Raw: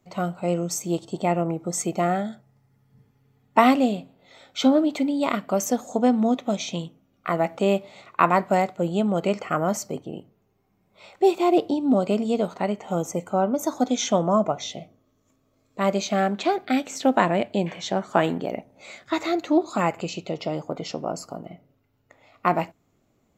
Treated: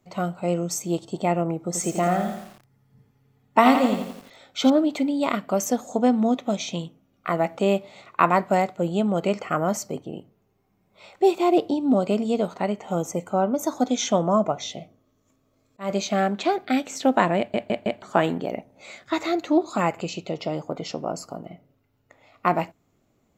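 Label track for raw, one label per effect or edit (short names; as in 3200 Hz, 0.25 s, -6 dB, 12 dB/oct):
1.590000	4.700000	lo-fi delay 85 ms, feedback 55%, word length 7-bit, level -7 dB
14.630000	15.900000	auto swell 0.222 s
17.380000	17.380000	stutter in place 0.16 s, 4 plays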